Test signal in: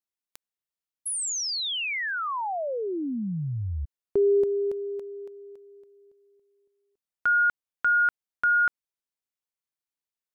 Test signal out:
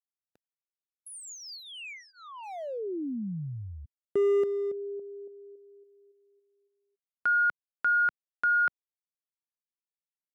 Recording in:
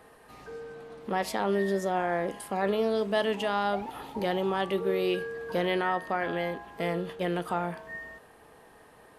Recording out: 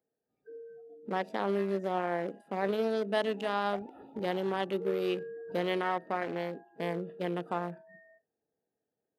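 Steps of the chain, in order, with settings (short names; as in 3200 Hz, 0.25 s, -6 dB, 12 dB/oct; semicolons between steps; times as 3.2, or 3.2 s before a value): Wiener smoothing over 41 samples; spectral noise reduction 25 dB; Bessel high-pass 160 Hz, order 2; gain -1.5 dB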